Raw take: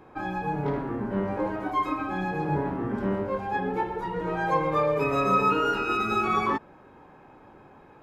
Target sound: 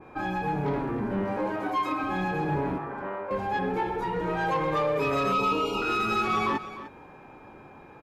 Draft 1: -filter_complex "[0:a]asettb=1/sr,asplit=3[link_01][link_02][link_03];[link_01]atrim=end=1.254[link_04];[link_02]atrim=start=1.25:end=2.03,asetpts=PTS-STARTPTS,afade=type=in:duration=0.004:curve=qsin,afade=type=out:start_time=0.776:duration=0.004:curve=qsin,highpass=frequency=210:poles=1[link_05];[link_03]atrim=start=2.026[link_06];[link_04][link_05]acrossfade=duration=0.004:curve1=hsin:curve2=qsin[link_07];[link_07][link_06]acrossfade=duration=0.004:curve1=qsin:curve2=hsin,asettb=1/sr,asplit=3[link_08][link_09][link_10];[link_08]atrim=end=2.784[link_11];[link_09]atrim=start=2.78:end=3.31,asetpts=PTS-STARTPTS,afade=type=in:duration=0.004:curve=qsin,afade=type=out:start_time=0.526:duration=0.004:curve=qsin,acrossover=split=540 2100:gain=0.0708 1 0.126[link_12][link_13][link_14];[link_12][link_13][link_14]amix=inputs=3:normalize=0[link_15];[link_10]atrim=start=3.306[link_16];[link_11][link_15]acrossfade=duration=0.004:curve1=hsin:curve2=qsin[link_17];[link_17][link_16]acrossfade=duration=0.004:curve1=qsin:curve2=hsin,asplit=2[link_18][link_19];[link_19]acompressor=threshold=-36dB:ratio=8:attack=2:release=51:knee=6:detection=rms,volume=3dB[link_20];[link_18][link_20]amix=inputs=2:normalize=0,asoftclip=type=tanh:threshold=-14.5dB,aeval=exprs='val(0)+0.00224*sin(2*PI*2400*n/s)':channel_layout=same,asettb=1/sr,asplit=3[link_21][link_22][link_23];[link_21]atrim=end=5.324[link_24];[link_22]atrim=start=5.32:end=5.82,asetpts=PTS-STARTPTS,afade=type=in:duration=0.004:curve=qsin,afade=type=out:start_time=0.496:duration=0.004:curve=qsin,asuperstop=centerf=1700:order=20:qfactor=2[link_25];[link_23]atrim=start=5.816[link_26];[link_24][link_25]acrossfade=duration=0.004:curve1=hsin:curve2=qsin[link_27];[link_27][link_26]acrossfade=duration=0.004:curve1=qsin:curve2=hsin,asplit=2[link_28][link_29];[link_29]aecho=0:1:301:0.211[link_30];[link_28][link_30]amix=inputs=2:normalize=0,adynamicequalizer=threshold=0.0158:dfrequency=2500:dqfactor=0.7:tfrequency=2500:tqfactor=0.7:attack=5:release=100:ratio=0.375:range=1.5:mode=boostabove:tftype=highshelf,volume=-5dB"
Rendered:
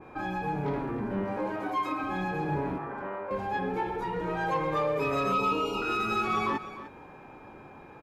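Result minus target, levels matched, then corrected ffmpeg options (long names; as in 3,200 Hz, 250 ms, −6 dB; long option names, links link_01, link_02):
downward compressor: peak gain reduction +9.5 dB
-filter_complex "[0:a]asettb=1/sr,asplit=3[link_01][link_02][link_03];[link_01]atrim=end=1.254[link_04];[link_02]atrim=start=1.25:end=2.03,asetpts=PTS-STARTPTS,afade=type=in:duration=0.004:curve=qsin,afade=type=out:start_time=0.776:duration=0.004:curve=qsin,highpass=frequency=210:poles=1[link_05];[link_03]atrim=start=2.026[link_06];[link_04][link_05]acrossfade=duration=0.004:curve1=hsin:curve2=qsin[link_07];[link_07][link_06]acrossfade=duration=0.004:curve1=qsin:curve2=hsin,asettb=1/sr,asplit=3[link_08][link_09][link_10];[link_08]atrim=end=2.784[link_11];[link_09]atrim=start=2.78:end=3.31,asetpts=PTS-STARTPTS,afade=type=in:duration=0.004:curve=qsin,afade=type=out:start_time=0.526:duration=0.004:curve=qsin,acrossover=split=540 2100:gain=0.0708 1 0.126[link_12][link_13][link_14];[link_12][link_13][link_14]amix=inputs=3:normalize=0[link_15];[link_10]atrim=start=3.306[link_16];[link_11][link_15]acrossfade=duration=0.004:curve1=hsin:curve2=qsin[link_17];[link_17][link_16]acrossfade=duration=0.004:curve1=qsin:curve2=hsin,asplit=2[link_18][link_19];[link_19]acompressor=threshold=-25dB:ratio=8:attack=2:release=51:knee=6:detection=rms,volume=3dB[link_20];[link_18][link_20]amix=inputs=2:normalize=0,asoftclip=type=tanh:threshold=-14.5dB,aeval=exprs='val(0)+0.00224*sin(2*PI*2400*n/s)':channel_layout=same,asettb=1/sr,asplit=3[link_21][link_22][link_23];[link_21]atrim=end=5.324[link_24];[link_22]atrim=start=5.32:end=5.82,asetpts=PTS-STARTPTS,afade=type=in:duration=0.004:curve=qsin,afade=type=out:start_time=0.496:duration=0.004:curve=qsin,asuperstop=centerf=1700:order=20:qfactor=2[link_25];[link_23]atrim=start=5.816[link_26];[link_24][link_25]acrossfade=duration=0.004:curve1=hsin:curve2=qsin[link_27];[link_27][link_26]acrossfade=duration=0.004:curve1=qsin:curve2=hsin,asplit=2[link_28][link_29];[link_29]aecho=0:1:301:0.211[link_30];[link_28][link_30]amix=inputs=2:normalize=0,adynamicequalizer=threshold=0.0158:dfrequency=2500:dqfactor=0.7:tfrequency=2500:tqfactor=0.7:attack=5:release=100:ratio=0.375:range=1.5:mode=boostabove:tftype=highshelf,volume=-5dB"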